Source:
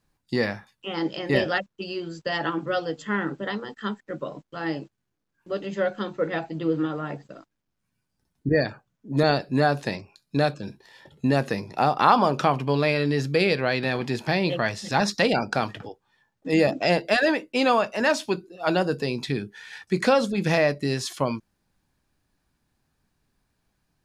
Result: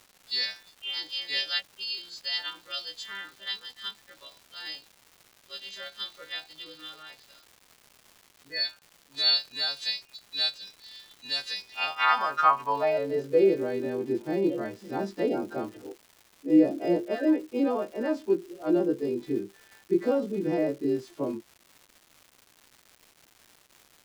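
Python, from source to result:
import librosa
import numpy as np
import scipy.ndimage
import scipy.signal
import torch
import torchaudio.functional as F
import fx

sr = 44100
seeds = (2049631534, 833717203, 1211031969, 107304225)

y = fx.freq_snap(x, sr, grid_st=2)
y = fx.filter_sweep_bandpass(y, sr, from_hz=3900.0, to_hz=340.0, start_s=11.55, end_s=13.52, q=4.2)
y = fx.dmg_crackle(y, sr, seeds[0], per_s=440.0, level_db=-49.0)
y = y * librosa.db_to_amplitude(6.5)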